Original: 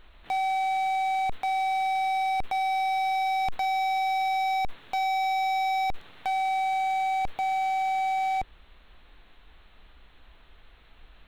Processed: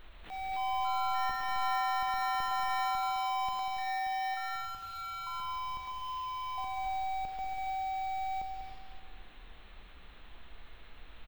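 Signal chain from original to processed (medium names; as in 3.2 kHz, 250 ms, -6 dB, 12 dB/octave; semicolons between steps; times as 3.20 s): compression 3:1, threshold -41 dBFS, peak gain reduction 10.5 dB; peak limiter -37.5 dBFS, peak gain reduction 11 dB; 4.34–6.58 s: band-pass filter 2.9 kHz, Q 3.7; loudspeakers at several distances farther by 66 m -9 dB, 96 m -9 dB; Schroeder reverb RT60 2 s, combs from 32 ms, DRR 5.5 dB; ever faster or slower copies 339 ms, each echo +5 st, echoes 3; careless resampling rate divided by 2×, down none, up hold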